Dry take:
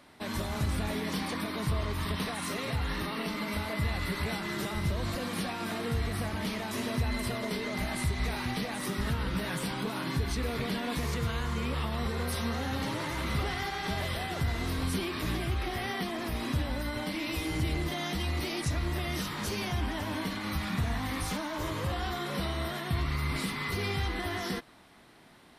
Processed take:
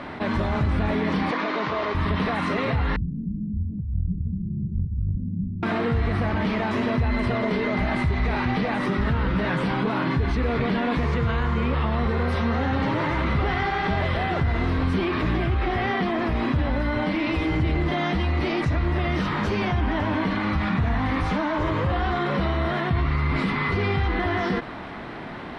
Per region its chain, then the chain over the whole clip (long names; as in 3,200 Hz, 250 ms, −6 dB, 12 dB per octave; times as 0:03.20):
0:01.31–0:01.95: variable-slope delta modulation 32 kbit/s + high-pass filter 360 Hz
0:02.96–0:05.63: inverse Chebyshev low-pass filter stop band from 740 Hz, stop band 70 dB + compressor whose output falls as the input rises −35 dBFS, ratio −0.5
whole clip: low-pass filter 2,200 Hz 12 dB per octave; envelope flattener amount 50%; level +6 dB